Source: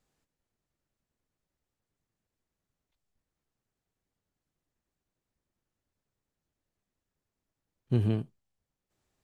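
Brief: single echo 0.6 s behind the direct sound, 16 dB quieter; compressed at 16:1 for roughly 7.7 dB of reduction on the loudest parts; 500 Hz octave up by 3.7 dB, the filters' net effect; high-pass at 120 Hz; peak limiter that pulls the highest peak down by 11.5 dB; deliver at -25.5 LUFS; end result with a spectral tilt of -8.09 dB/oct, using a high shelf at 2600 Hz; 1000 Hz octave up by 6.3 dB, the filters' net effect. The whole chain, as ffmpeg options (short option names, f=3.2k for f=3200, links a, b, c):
-af "highpass=120,equalizer=f=500:t=o:g=4,equalizer=f=1k:t=o:g=8,highshelf=f=2.6k:g=-7.5,acompressor=threshold=-29dB:ratio=16,alimiter=level_in=8.5dB:limit=-24dB:level=0:latency=1,volume=-8.5dB,aecho=1:1:600:0.158,volume=21.5dB"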